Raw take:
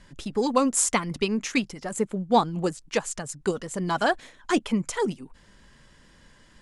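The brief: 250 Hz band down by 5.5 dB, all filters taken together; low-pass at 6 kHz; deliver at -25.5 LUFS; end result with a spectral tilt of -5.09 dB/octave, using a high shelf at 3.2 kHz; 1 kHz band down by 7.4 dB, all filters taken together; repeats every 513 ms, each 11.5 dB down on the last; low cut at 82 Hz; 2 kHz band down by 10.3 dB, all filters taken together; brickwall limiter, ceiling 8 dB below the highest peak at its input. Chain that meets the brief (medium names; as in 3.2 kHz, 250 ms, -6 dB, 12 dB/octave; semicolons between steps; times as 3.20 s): high-pass 82 Hz; low-pass 6 kHz; peaking EQ 250 Hz -6.5 dB; peaking EQ 1 kHz -7 dB; peaking EQ 2 kHz -9 dB; treble shelf 3.2 kHz -6 dB; peak limiter -22.5 dBFS; feedback delay 513 ms, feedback 27%, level -11.5 dB; trim +9 dB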